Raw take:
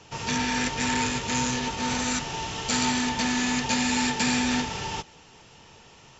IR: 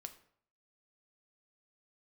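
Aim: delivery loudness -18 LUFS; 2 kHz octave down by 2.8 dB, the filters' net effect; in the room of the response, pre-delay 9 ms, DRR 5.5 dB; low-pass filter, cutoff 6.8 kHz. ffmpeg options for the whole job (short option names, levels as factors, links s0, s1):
-filter_complex "[0:a]lowpass=6800,equalizer=f=2000:t=o:g=-3.5,asplit=2[s0][s1];[1:a]atrim=start_sample=2205,adelay=9[s2];[s1][s2]afir=irnorm=-1:irlink=0,volume=0.944[s3];[s0][s3]amix=inputs=2:normalize=0,volume=2.51"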